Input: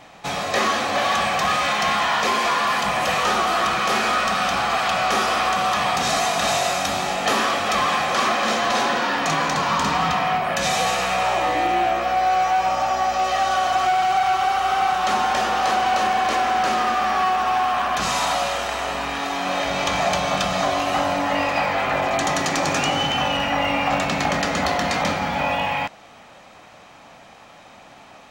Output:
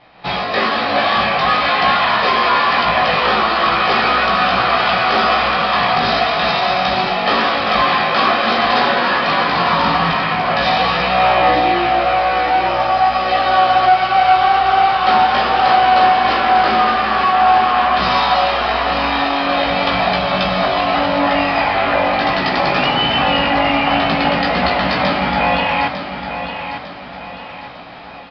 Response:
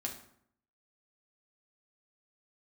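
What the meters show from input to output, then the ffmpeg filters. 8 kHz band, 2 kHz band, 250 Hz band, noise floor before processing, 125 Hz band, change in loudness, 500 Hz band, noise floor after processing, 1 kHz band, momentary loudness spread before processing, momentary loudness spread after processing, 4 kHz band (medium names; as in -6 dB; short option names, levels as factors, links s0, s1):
under -15 dB, +6.5 dB, +6.5 dB, -46 dBFS, +6.0 dB, +6.0 dB, +6.5 dB, -31 dBFS, +6.5 dB, 3 LU, 4 LU, +6.0 dB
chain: -filter_complex "[0:a]dynaudnorm=f=150:g=3:m=3.98,flanger=delay=16:depth=2.2:speed=0.44,asplit=2[s0][s1];[s1]aecho=0:1:901|1802|2703|3604|4505:0.355|0.145|0.0596|0.0245|0.01[s2];[s0][s2]amix=inputs=2:normalize=0,aresample=11025,aresample=44100"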